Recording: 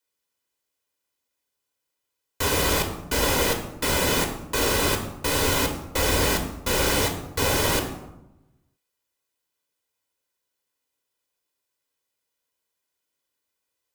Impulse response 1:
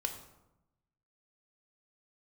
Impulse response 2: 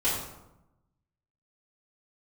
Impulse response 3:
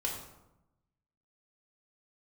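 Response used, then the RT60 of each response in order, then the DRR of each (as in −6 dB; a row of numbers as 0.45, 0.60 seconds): 1; 0.90, 0.90, 0.90 seconds; 4.0, −11.0, −2.5 decibels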